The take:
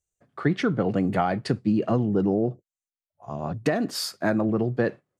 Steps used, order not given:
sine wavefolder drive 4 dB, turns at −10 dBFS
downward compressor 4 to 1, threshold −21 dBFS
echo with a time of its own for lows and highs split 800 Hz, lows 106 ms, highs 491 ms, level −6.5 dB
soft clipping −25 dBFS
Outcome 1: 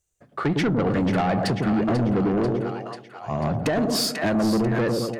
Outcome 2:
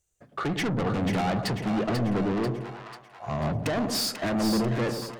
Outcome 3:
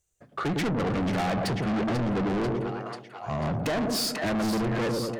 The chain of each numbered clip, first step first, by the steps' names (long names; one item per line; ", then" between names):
echo with a time of its own for lows and highs, then downward compressor, then soft clipping, then sine wavefolder
downward compressor, then sine wavefolder, then soft clipping, then echo with a time of its own for lows and highs
sine wavefolder, then echo with a time of its own for lows and highs, then soft clipping, then downward compressor